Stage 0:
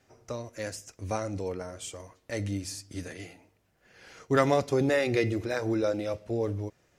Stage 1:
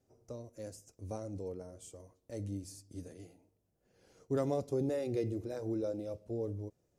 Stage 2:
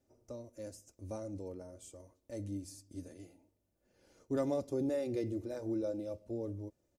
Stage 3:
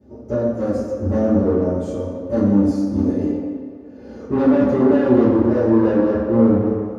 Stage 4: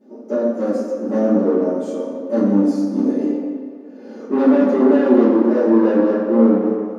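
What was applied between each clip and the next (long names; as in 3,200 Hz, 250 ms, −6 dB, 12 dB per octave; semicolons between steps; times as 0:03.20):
drawn EQ curve 480 Hz 0 dB, 1,900 Hz −17 dB, 9,500 Hz −2 dB; level −7.5 dB
comb filter 3.4 ms, depth 41%; level −1.5 dB
in parallel at +0.5 dB: downward compressor, threshold −45 dBFS, peak gain reduction 15 dB; on the sum: hard clipping −38 dBFS, distortion −6 dB; convolution reverb RT60 2.1 s, pre-delay 3 ms, DRR −13.5 dB; level −5 dB
linear-phase brick-wall high-pass 190 Hz; level +1.5 dB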